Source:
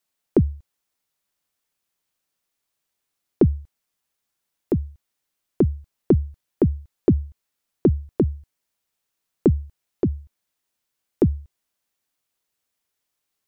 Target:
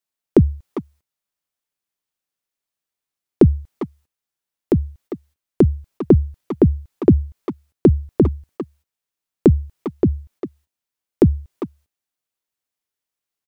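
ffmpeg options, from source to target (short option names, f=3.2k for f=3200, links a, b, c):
-filter_complex "[0:a]asplit=2[a][b];[b]adelay=400,highpass=300,lowpass=3.4k,asoftclip=type=hard:threshold=-15dB,volume=-8dB[c];[a][c]amix=inputs=2:normalize=0,agate=range=-12dB:threshold=-54dB:ratio=16:detection=peak,volume=5dB"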